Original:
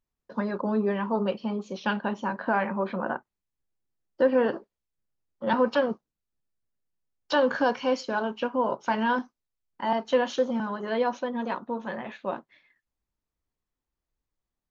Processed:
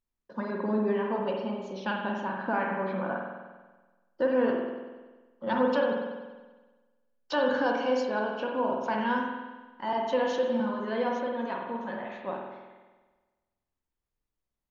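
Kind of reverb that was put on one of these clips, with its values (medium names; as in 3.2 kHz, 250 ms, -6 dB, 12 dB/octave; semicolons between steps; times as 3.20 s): spring tank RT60 1.3 s, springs 47 ms, chirp 50 ms, DRR 0 dB; trim -5 dB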